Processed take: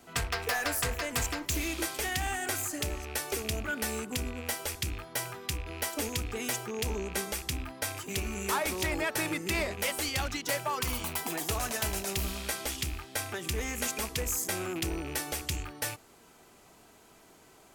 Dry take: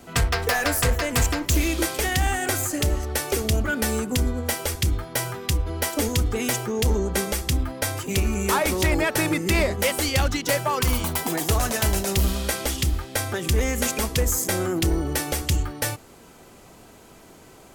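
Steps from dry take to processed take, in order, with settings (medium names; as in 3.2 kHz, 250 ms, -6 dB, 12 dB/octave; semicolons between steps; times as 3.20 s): rattle on loud lows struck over -29 dBFS, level -25 dBFS; bass shelf 320 Hz -7 dB; band-stop 530 Hz, Q 12; trim -7 dB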